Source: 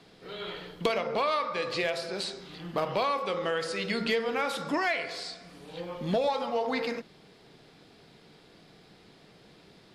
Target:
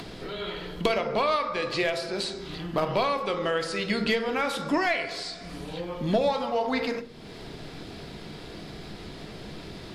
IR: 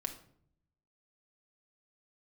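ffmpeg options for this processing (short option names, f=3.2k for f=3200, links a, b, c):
-filter_complex "[0:a]acompressor=mode=upward:threshold=-34dB:ratio=2.5,lowshelf=f=110:g=12,asplit=2[a][b];[1:a]atrim=start_sample=2205,asetrate=66150,aresample=44100[c];[b][c]afir=irnorm=-1:irlink=0,volume=2.5dB[d];[a][d]amix=inputs=2:normalize=0,volume=-2.5dB"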